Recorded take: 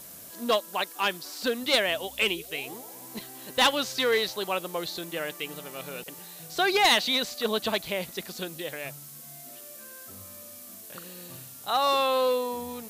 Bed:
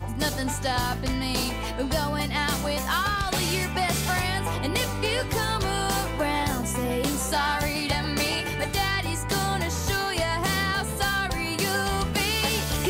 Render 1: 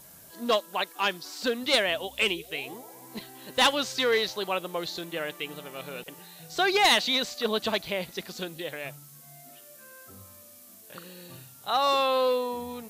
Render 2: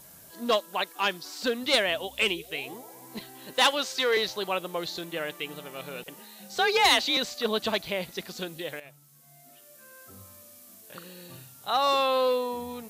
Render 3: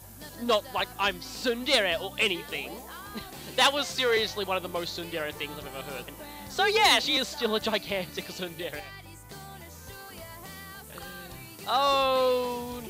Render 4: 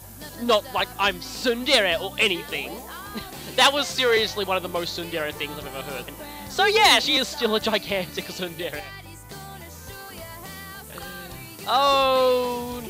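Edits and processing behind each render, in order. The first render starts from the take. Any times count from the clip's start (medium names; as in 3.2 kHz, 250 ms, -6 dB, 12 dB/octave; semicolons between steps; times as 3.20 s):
noise print and reduce 6 dB
3.53–4.17 s: high-pass 310 Hz; 6.16–7.17 s: frequency shift +40 Hz; 8.80–10.20 s: fade in, from -13 dB
add bed -19 dB
trim +5 dB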